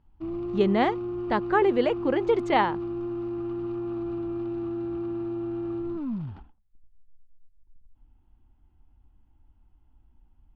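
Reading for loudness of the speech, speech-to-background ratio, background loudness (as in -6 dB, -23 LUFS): -25.0 LUFS, 7.5 dB, -32.5 LUFS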